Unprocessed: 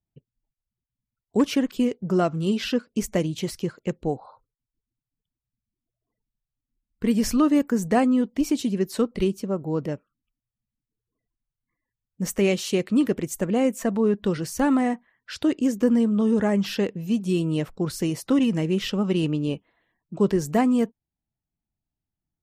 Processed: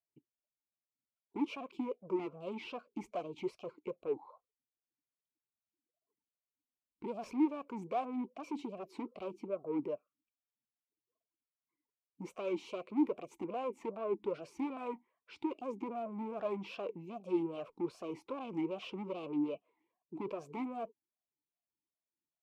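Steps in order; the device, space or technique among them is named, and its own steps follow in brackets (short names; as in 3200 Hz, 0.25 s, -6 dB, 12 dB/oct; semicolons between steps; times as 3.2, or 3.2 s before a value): talk box (tube stage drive 27 dB, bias 0.35; vowel sweep a-u 2.5 Hz); gain +3.5 dB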